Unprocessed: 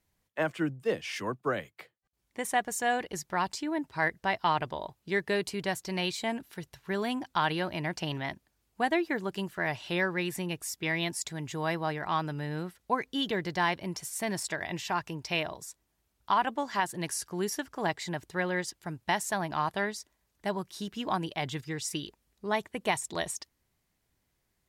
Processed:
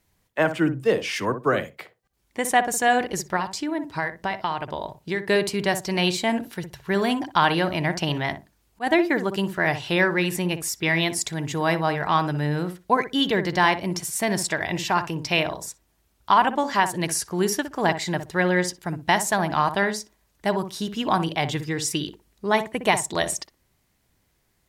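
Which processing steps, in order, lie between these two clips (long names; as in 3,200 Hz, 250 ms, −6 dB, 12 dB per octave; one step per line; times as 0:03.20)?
0:03.36–0:05.28: downward compressor 4 to 1, threshold −33 dBFS, peak gain reduction 10 dB
0:08.16–0:08.87: volume swells 128 ms
feedback echo with a low-pass in the loop 61 ms, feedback 19%, low-pass 950 Hz, level −8 dB
level +8.5 dB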